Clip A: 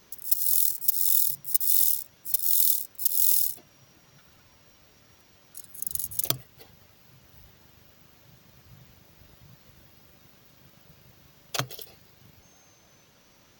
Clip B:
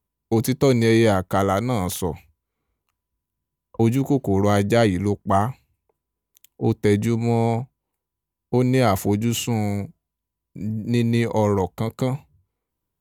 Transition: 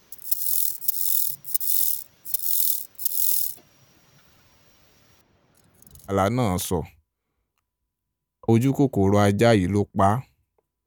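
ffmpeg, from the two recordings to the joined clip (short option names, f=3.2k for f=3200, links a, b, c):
-filter_complex "[0:a]asettb=1/sr,asplit=3[a][b][c];[a]atrim=end=5.214[d];[b]atrim=start=5.21:end=6.16,asetpts=PTS-STARTPTS,afade=t=in:d=0.004:c=qsin,afade=t=out:st=0.946:d=0.004:c=qsin,lowpass=f=1.1k:p=1[e];[c]atrim=start=6.156[f];[d][e]acrossfade=d=0.004:c1=hsin:c2=qsin[g];[g][f]acrossfade=d=0.004:c1=qsin:c2=hsin,apad=whole_dur=10.86,atrim=end=10.86,atrim=end=6.16,asetpts=PTS-STARTPTS[h];[1:a]atrim=start=1.39:end=6.17,asetpts=PTS-STARTPTS[i];[h][i]acrossfade=d=0.08:c1=tri:c2=tri"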